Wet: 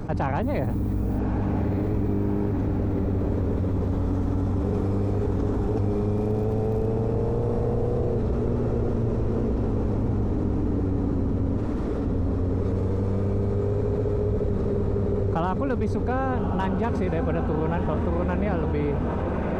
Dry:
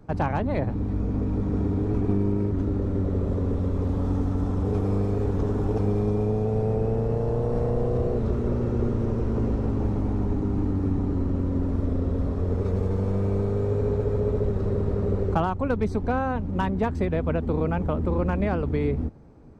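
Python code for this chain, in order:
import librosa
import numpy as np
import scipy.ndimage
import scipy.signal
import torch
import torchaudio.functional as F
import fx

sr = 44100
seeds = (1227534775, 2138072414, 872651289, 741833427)

y = fx.dmg_noise_colour(x, sr, seeds[0], colour='violet', level_db=-59.0, at=(0.41, 1.18), fade=0.02)
y = fx.dmg_crackle(y, sr, seeds[1], per_s=80.0, level_db=-40.0, at=(6.15, 6.87), fade=0.02)
y = fx.highpass(y, sr, hz=1000.0, slope=12, at=(11.57, 12.06))
y = fx.echo_diffused(y, sr, ms=1196, feedback_pct=65, wet_db=-7.5)
y = fx.env_flatten(y, sr, amount_pct=70)
y = F.gain(torch.from_numpy(y), -3.5).numpy()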